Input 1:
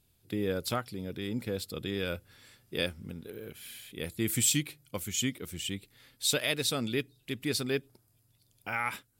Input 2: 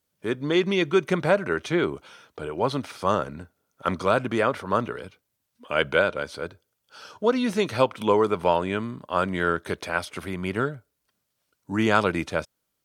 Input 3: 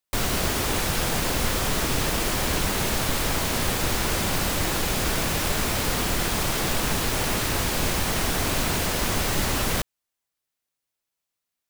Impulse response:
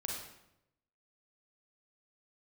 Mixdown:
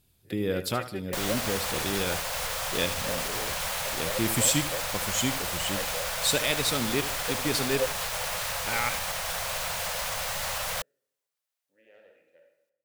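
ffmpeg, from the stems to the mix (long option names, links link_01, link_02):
-filter_complex "[0:a]volume=2.5dB,asplit=3[link_01][link_02][link_03];[link_02]volume=-13dB[link_04];[1:a]aeval=exprs='0.708*(cos(1*acos(clip(val(0)/0.708,-1,1)))-cos(1*PI/2))+0.224*(cos(4*acos(clip(val(0)/0.708,-1,1)))-cos(4*PI/2))':channel_layout=same,asplit=3[link_05][link_06][link_07];[link_05]bandpass=frequency=530:width_type=q:width=8,volume=0dB[link_08];[link_06]bandpass=frequency=1840:width_type=q:width=8,volume=-6dB[link_09];[link_07]bandpass=frequency=2480:width_type=q:width=8,volume=-9dB[link_10];[link_08][link_09][link_10]amix=inputs=3:normalize=0,volume=-8.5dB,asplit=2[link_11][link_12];[link_12]volume=-20.5dB[link_13];[2:a]firequalizer=gain_entry='entry(170,0);entry(300,-27);entry(510,11)':delay=0.05:min_phase=1,alimiter=limit=-7.5dB:level=0:latency=1:release=51,adelay=1000,volume=-14dB[link_14];[link_03]apad=whole_len=566495[link_15];[link_11][link_15]sidechaingate=range=-33dB:threshold=-54dB:ratio=16:detection=peak[link_16];[3:a]atrim=start_sample=2205[link_17];[link_13][link_17]afir=irnorm=-1:irlink=0[link_18];[link_04]aecho=0:1:76|152|228|304|380:1|0.37|0.137|0.0507|0.0187[link_19];[link_01][link_16][link_14][link_18][link_19]amix=inputs=5:normalize=0"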